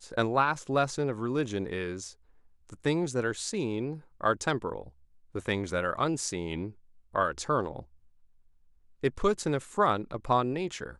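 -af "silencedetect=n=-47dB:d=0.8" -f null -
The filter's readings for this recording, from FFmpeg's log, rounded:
silence_start: 7.84
silence_end: 9.03 | silence_duration: 1.19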